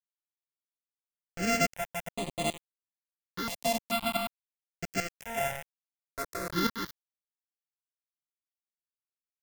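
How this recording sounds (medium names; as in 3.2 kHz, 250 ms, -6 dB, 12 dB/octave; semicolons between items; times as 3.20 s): a buzz of ramps at a fixed pitch in blocks of 64 samples; tremolo saw up 1.2 Hz, depth 75%; a quantiser's noise floor 6-bit, dither none; notches that jump at a steady rate 2.3 Hz 380–5400 Hz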